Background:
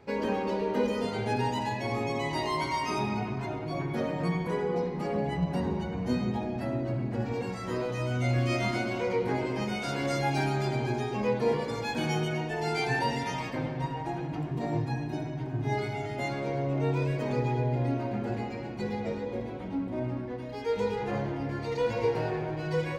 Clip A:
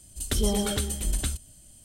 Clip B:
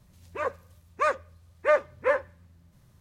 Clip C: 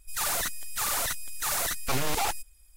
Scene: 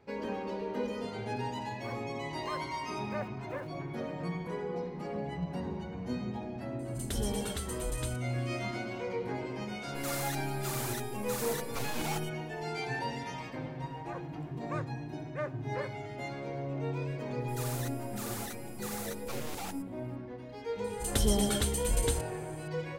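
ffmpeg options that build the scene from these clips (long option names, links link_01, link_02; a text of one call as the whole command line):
ffmpeg -i bed.wav -i cue0.wav -i cue1.wav -i cue2.wav -filter_complex "[2:a]asplit=2[link_01][link_02];[1:a]asplit=2[link_03][link_04];[3:a]asplit=2[link_05][link_06];[0:a]volume=-7dB[link_07];[link_01]aeval=exprs='val(0)*gte(abs(val(0)),0.0112)':channel_layout=same,atrim=end=3,asetpts=PTS-STARTPTS,volume=-17.5dB,afade=type=in:duration=0.004:curve=hsin,afade=type=out:start_time=2.996:duration=0.004:curve=hsin,adelay=1460[link_08];[link_03]atrim=end=1.84,asetpts=PTS-STARTPTS,volume=-9.5dB,afade=type=in:duration=0.004:curve=hsin,afade=type=out:start_time=1.836:duration=0.004:curve=hsin,adelay=6790[link_09];[link_05]atrim=end=2.76,asetpts=PTS-STARTPTS,volume=-10dB,afade=type=in:duration=0.004:curve=hsin,afade=type=out:start_time=2.756:duration=0.004:curve=hsin,adelay=9870[link_10];[link_02]atrim=end=3,asetpts=PTS-STARTPTS,volume=-15.5dB,afade=type=in:duration=0.004:curve=hsin,afade=type=out:start_time=2.996:duration=0.004:curve=hsin,adelay=13700[link_11];[link_06]atrim=end=2.76,asetpts=PTS-STARTPTS,volume=-13dB,afade=type=in:duration=0.004:curve=hsin,afade=type=out:start_time=2.756:duration=0.004:curve=hsin,adelay=17400[link_12];[link_04]atrim=end=1.84,asetpts=PTS-STARTPTS,volume=-2.5dB,afade=type=in:duration=0.004:curve=hsin,afade=type=out:start_time=1.836:duration=0.004:curve=hsin,adelay=919044S[link_13];[link_07][link_08][link_09][link_10][link_11][link_12][link_13]amix=inputs=7:normalize=0" out.wav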